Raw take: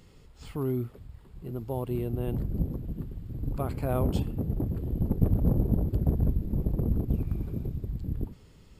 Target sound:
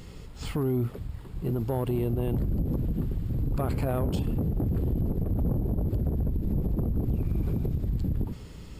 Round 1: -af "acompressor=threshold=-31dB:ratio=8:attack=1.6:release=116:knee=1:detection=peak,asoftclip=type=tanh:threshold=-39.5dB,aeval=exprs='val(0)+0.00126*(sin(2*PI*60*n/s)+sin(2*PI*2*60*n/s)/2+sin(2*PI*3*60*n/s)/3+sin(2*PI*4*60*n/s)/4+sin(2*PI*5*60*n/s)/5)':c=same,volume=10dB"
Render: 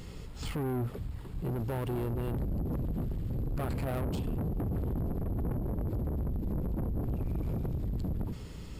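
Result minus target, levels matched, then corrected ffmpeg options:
soft clip: distortion +15 dB
-af "acompressor=threshold=-31dB:ratio=8:attack=1.6:release=116:knee=1:detection=peak,asoftclip=type=tanh:threshold=-27.5dB,aeval=exprs='val(0)+0.00126*(sin(2*PI*60*n/s)+sin(2*PI*2*60*n/s)/2+sin(2*PI*3*60*n/s)/3+sin(2*PI*4*60*n/s)/4+sin(2*PI*5*60*n/s)/5)':c=same,volume=10dB"

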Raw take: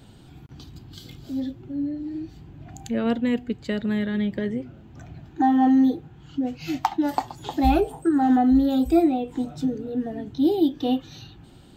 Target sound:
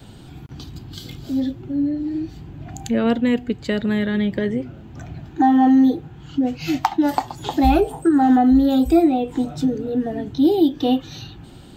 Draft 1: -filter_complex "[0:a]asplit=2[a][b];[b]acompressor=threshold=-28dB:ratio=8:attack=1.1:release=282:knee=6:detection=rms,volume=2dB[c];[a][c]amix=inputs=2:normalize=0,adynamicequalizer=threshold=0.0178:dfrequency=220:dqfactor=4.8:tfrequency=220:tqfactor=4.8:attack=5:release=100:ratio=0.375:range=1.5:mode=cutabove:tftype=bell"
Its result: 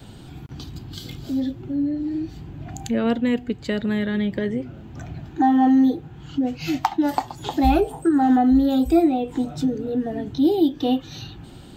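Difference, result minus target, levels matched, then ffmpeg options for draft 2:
compressor: peak gain reduction +8 dB
-filter_complex "[0:a]asplit=2[a][b];[b]acompressor=threshold=-19dB:ratio=8:attack=1.1:release=282:knee=6:detection=rms,volume=2dB[c];[a][c]amix=inputs=2:normalize=0,adynamicequalizer=threshold=0.0178:dfrequency=220:dqfactor=4.8:tfrequency=220:tqfactor=4.8:attack=5:release=100:ratio=0.375:range=1.5:mode=cutabove:tftype=bell"

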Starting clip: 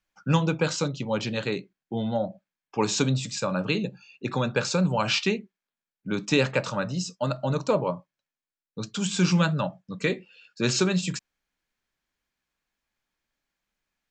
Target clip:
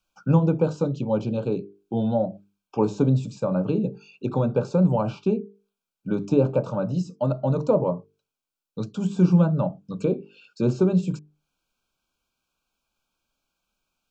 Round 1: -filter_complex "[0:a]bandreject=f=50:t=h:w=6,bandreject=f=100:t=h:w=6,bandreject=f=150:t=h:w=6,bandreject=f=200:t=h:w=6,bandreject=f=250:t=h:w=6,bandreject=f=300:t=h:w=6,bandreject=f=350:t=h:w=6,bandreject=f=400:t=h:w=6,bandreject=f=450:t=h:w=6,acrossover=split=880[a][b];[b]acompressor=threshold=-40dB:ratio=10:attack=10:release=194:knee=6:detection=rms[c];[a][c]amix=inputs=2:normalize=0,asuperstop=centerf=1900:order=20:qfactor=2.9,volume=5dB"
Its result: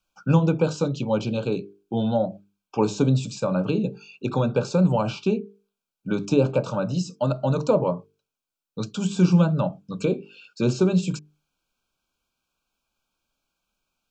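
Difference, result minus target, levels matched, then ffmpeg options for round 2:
compressor: peak gain reduction -11 dB
-filter_complex "[0:a]bandreject=f=50:t=h:w=6,bandreject=f=100:t=h:w=6,bandreject=f=150:t=h:w=6,bandreject=f=200:t=h:w=6,bandreject=f=250:t=h:w=6,bandreject=f=300:t=h:w=6,bandreject=f=350:t=h:w=6,bandreject=f=400:t=h:w=6,bandreject=f=450:t=h:w=6,acrossover=split=880[a][b];[b]acompressor=threshold=-52dB:ratio=10:attack=10:release=194:knee=6:detection=rms[c];[a][c]amix=inputs=2:normalize=0,asuperstop=centerf=1900:order=20:qfactor=2.9,volume=5dB"

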